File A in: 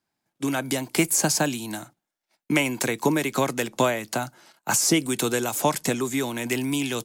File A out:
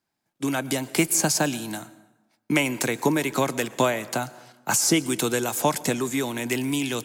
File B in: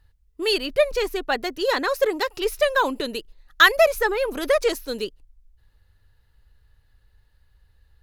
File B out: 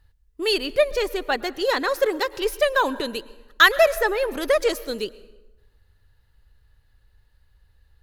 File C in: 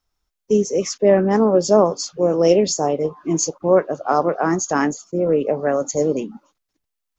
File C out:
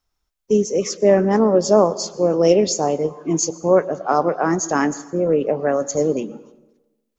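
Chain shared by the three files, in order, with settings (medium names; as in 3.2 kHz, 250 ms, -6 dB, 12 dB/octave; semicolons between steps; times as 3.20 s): plate-style reverb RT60 1.1 s, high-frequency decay 0.65×, pre-delay 95 ms, DRR 18.5 dB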